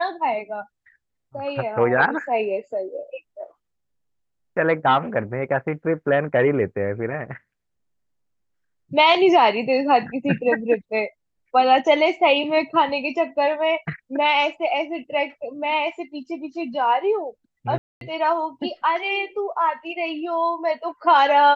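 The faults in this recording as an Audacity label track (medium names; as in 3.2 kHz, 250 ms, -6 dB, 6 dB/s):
17.780000	18.010000	dropout 232 ms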